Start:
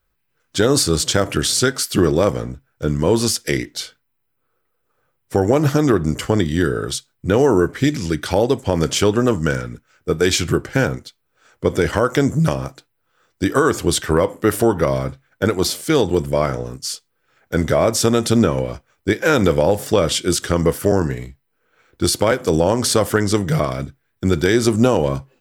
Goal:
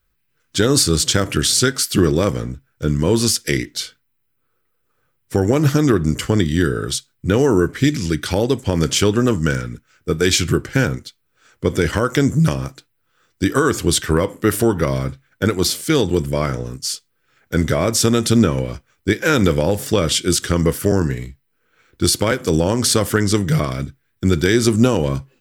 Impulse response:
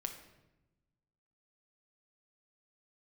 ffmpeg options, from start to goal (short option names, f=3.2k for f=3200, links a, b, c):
-af "equalizer=f=710:w=1:g=-8,volume=2.5dB"